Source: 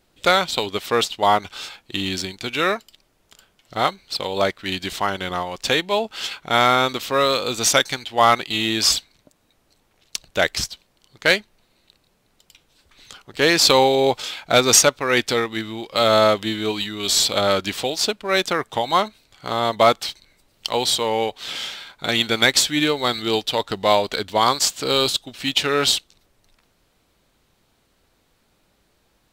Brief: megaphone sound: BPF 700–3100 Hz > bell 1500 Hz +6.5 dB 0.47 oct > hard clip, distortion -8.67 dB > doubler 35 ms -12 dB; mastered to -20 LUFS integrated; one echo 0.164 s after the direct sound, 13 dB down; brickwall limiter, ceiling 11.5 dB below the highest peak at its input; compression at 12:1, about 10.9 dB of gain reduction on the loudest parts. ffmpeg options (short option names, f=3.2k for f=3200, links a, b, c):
-filter_complex "[0:a]acompressor=threshold=-20dB:ratio=12,alimiter=limit=-15dB:level=0:latency=1,highpass=700,lowpass=3.1k,equalizer=f=1.5k:t=o:w=0.47:g=6.5,aecho=1:1:164:0.224,asoftclip=type=hard:threshold=-27dB,asplit=2[a][b];[b]adelay=35,volume=-12dB[c];[a][c]amix=inputs=2:normalize=0,volume=12dB"